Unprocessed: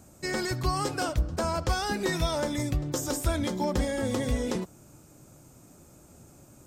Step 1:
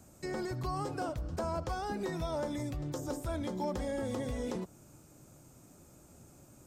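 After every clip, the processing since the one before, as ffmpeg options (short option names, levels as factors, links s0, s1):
-filter_complex "[0:a]acrossover=split=590|1100[s0][s1][s2];[s0]alimiter=level_in=1.41:limit=0.0631:level=0:latency=1,volume=0.708[s3];[s2]acompressor=threshold=0.00562:ratio=6[s4];[s3][s1][s4]amix=inputs=3:normalize=0,volume=0.631"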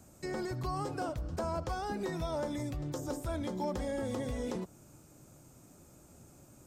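-af anull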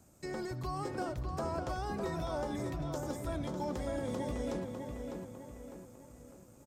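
-filter_complex "[0:a]asplit=2[s0][s1];[s1]adelay=602,lowpass=f=3100:p=1,volume=0.596,asplit=2[s2][s3];[s3]adelay=602,lowpass=f=3100:p=1,volume=0.49,asplit=2[s4][s5];[s5]adelay=602,lowpass=f=3100:p=1,volume=0.49,asplit=2[s6][s7];[s7]adelay=602,lowpass=f=3100:p=1,volume=0.49,asplit=2[s8][s9];[s9]adelay=602,lowpass=f=3100:p=1,volume=0.49,asplit=2[s10][s11];[s11]adelay=602,lowpass=f=3100:p=1,volume=0.49[s12];[s0][s2][s4][s6][s8][s10][s12]amix=inputs=7:normalize=0,asplit=2[s13][s14];[s14]aeval=exprs='sgn(val(0))*max(abs(val(0))-0.00211,0)':c=same,volume=0.501[s15];[s13][s15]amix=inputs=2:normalize=0,volume=0.531"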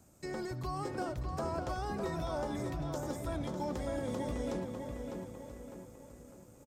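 -af "aecho=1:1:983:0.141"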